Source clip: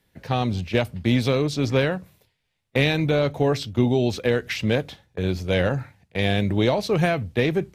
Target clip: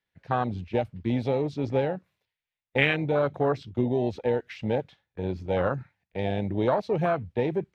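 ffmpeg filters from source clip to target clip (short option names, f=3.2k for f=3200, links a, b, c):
-af "highshelf=f=10k:g=-7.5,afwtdn=0.0708,equalizer=f=1.9k:w=0.33:g=12,volume=-8dB"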